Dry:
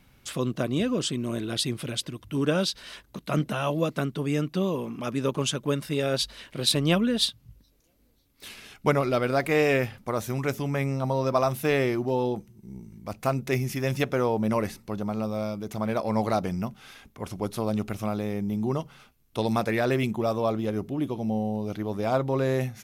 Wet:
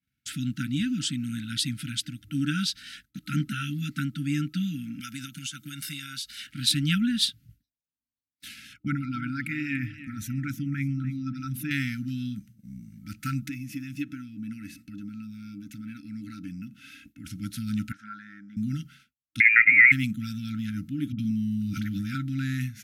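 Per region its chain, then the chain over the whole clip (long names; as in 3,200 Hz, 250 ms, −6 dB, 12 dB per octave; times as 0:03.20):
0:05.00–0:06.47: spectral tilt +2.5 dB per octave + comb filter 1.4 ms, depth 36% + downward compressor 16 to 1, threshold −30 dBFS
0:08.73–0:11.71: spectral envelope exaggerated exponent 1.5 + feedback echo with a swinging delay time 291 ms, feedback 33%, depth 91 cents, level −14 dB
0:13.49–0:17.25: downward compressor 2 to 1, threshold −46 dBFS + hollow resonant body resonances 300/570/2,600 Hz, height 15 dB, ringing for 55 ms
0:17.92–0:18.57: band-pass filter 550–4,300 Hz + high shelf with overshoot 2,000 Hz −8.5 dB, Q 3
0:19.40–0:19.92: parametric band 520 Hz +13 dB 1.5 octaves + voice inversion scrambler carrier 2,600 Hz
0:21.12–0:22.15: all-pass dispersion highs, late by 66 ms, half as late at 530 Hz + envelope flattener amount 70%
whole clip: high-pass filter 75 Hz; brick-wall band-stop 310–1,300 Hz; downward expander −46 dBFS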